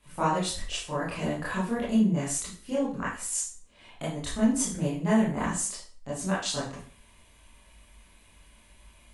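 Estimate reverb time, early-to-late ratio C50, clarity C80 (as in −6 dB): 0.40 s, 2.5 dB, 9.0 dB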